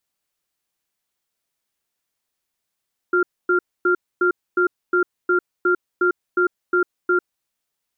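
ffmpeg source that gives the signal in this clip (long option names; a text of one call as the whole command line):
ffmpeg -f lavfi -i "aevalsrc='0.141*(sin(2*PI*359*t)+sin(2*PI*1390*t))*clip(min(mod(t,0.36),0.1-mod(t,0.36))/0.005,0,1)':duration=4.21:sample_rate=44100" out.wav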